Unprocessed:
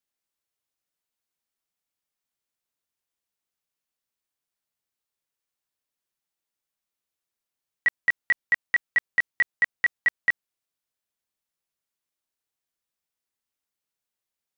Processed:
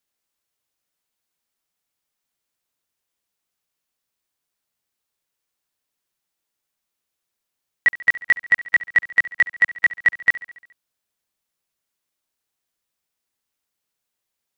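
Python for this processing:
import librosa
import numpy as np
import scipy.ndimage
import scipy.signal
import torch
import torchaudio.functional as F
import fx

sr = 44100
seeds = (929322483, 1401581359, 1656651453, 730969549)

y = fx.highpass(x, sr, hz=160.0, slope=6, at=(8.66, 10.17))
y = fx.echo_feedback(y, sr, ms=70, feedback_pct=60, wet_db=-17.0)
y = F.gain(torch.from_numpy(y), 6.0).numpy()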